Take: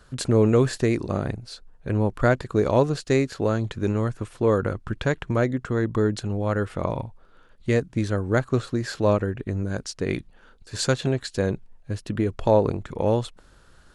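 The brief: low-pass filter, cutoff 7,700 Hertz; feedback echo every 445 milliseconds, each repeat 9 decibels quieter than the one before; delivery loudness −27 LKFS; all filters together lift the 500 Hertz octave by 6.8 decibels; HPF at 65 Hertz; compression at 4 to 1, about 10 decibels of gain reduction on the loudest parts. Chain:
high-pass filter 65 Hz
low-pass filter 7,700 Hz
parametric band 500 Hz +8 dB
downward compressor 4 to 1, threshold −20 dBFS
repeating echo 445 ms, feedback 35%, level −9 dB
level −1 dB

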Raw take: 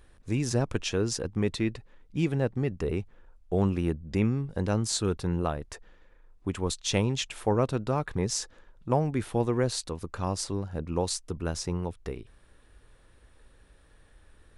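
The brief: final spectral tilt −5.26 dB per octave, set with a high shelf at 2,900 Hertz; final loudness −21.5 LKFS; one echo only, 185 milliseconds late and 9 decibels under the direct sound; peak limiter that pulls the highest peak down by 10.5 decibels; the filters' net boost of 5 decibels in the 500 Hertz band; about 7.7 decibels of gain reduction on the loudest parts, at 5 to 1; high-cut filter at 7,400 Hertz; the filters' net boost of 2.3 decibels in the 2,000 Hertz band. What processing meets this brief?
low-pass filter 7,400 Hz
parametric band 500 Hz +6 dB
parametric band 2,000 Hz +5 dB
high-shelf EQ 2,900 Hz −5.5 dB
downward compressor 5 to 1, threshold −26 dBFS
brickwall limiter −26 dBFS
single-tap delay 185 ms −9 dB
level +15.5 dB

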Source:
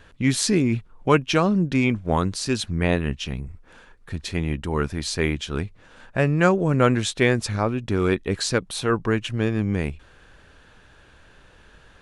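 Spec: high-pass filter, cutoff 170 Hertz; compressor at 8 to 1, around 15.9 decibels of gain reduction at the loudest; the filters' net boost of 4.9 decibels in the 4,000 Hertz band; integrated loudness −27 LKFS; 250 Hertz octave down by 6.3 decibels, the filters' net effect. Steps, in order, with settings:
high-pass filter 170 Hz
parametric band 250 Hz −7 dB
parametric band 4,000 Hz +6 dB
downward compressor 8 to 1, threshold −31 dBFS
level +8.5 dB

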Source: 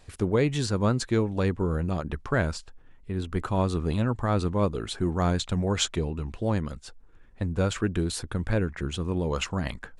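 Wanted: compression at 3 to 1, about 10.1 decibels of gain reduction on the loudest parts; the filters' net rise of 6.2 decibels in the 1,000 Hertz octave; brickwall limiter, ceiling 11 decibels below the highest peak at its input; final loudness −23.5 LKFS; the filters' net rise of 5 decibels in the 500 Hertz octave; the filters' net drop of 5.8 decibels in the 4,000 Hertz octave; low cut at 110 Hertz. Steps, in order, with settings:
high-pass filter 110 Hz
parametric band 500 Hz +4.5 dB
parametric band 1,000 Hz +7 dB
parametric band 4,000 Hz −8 dB
downward compressor 3 to 1, threshold −29 dBFS
level +14 dB
brickwall limiter −11.5 dBFS

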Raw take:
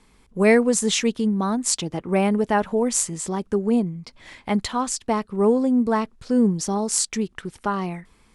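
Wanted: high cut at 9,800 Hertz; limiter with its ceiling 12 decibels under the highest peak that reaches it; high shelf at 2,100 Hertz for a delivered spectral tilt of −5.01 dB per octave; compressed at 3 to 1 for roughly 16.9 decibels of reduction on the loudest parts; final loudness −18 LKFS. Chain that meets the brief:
low-pass filter 9,800 Hz
high-shelf EQ 2,100 Hz −7.5 dB
downward compressor 3 to 1, threshold −37 dBFS
level +22.5 dB
brickwall limiter −9 dBFS

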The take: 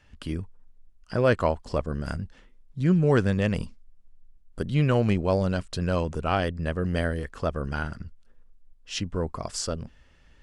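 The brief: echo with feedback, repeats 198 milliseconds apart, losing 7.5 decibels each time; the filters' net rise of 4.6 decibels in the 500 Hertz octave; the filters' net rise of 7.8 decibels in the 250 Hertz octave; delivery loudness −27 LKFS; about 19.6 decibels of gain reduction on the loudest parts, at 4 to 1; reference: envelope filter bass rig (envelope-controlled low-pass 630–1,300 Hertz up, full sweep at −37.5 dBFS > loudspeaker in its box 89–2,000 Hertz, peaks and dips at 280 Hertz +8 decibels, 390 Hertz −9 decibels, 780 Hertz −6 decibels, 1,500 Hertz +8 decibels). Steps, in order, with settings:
parametric band 250 Hz +6 dB
parametric band 500 Hz +7 dB
downward compressor 4 to 1, threshold −35 dBFS
repeating echo 198 ms, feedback 42%, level −7.5 dB
envelope-controlled low-pass 630–1,300 Hz up, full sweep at −37.5 dBFS
loudspeaker in its box 89–2,000 Hz, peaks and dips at 280 Hz +8 dB, 390 Hz −9 dB, 780 Hz −6 dB, 1,500 Hz +8 dB
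level +7.5 dB

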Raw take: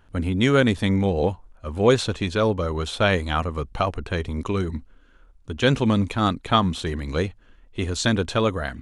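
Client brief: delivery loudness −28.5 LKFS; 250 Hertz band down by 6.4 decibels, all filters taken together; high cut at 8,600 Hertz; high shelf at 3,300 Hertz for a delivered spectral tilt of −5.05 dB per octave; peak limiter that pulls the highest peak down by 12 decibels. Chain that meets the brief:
low-pass filter 8,600 Hz
parametric band 250 Hz −8.5 dB
high-shelf EQ 3,300 Hz −5.5 dB
level +1.5 dB
brickwall limiter −17 dBFS

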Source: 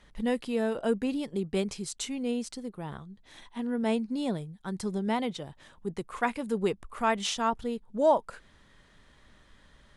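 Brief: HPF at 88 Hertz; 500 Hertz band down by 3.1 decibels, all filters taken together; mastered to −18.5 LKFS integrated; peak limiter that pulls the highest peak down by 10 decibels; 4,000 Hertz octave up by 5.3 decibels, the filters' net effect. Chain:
high-pass filter 88 Hz
parametric band 500 Hz −4 dB
parametric band 4,000 Hz +7 dB
level +16 dB
brickwall limiter −7 dBFS

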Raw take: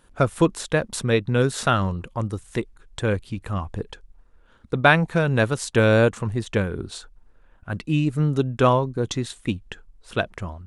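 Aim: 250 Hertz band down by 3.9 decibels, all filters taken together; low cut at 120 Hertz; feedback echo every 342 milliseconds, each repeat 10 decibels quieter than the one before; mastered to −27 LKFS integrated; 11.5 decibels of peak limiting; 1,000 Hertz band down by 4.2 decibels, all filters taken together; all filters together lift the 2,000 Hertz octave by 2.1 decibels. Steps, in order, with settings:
high-pass filter 120 Hz
parametric band 250 Hz −4.5 dB
parametric band 1,000 Hz −8.5 dB
parametric band 2,000 Hz +7 dB
brickwall limiter −11.5 dBFS
repeating echo 342 ms, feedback 32%, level −10 dB

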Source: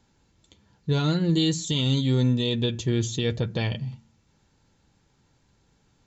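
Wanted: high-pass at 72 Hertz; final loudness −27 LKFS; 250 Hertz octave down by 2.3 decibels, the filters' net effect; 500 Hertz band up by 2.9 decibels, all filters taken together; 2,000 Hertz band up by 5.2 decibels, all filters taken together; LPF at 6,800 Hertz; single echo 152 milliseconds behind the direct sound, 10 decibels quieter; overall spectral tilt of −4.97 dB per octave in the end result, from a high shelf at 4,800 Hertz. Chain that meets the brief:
high-pass filter 72 Hz
low-pass filter 6,800 Hz
parametric band 250 Hz −5 dB
parametric band 500 Hz +5 dB
parametric band 2,000 Hz +5.5 dB
high-shelf EQ 4,800 Hz +5.5 dB
single-tap delay 152 ms −10 dB
level −2.5 dB

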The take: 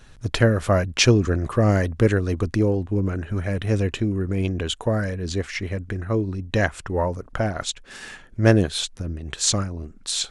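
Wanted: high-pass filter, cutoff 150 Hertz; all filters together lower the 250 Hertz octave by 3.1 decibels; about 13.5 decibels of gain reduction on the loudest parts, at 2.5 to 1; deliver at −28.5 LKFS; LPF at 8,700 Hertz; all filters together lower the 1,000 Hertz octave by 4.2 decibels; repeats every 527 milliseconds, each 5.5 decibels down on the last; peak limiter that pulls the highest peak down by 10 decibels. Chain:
high-pass filter 150 Hz
low-pass filter 8,700 Hz
parametric band 250 Hz −3 dB
parametric band 1,000 Hz −6 dB
downward compressor 2.5 to 1, threshold −35 dBFS
brickwall limiter −25 dBFS
repeating echo 527 ms, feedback 53%, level −5.5 dB
level +8 dB

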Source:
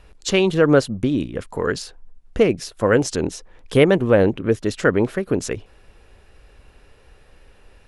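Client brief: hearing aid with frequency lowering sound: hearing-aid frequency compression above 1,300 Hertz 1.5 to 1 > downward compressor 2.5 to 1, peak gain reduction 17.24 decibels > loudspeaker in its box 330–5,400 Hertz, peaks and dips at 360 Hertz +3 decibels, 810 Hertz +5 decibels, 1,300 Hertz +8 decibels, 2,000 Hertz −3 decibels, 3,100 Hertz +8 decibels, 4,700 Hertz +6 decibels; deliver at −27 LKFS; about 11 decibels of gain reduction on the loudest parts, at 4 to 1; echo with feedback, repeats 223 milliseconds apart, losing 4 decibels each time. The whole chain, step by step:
downward compressor 4 to 1, threshold −23 dBFS
repeating echo 223 ms, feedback 63%, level −4 dB
hearing-aid frequency compression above 1,300 Hz 1.5 to 1
downward compressor 2.5 to 1, threshold −45 dBFS
loudspeaker in its box 330–5,400 Hz, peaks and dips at 360 Hz +3 dB, 810 Hz +5 dB, 1,300 Hz +8 dB, 2,000 Hz −3 dB, 3,100 Hz +8 dB, 4,700 Hz +6 dB
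level +14.5 dB

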